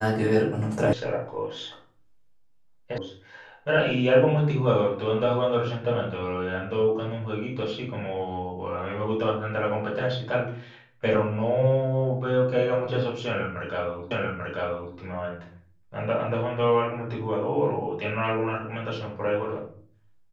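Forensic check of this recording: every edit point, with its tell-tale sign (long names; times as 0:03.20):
0:00.93: cut off before it has died away
0:02.98: cut off before it has died away
0:14.11: the same again, the last 0.84 s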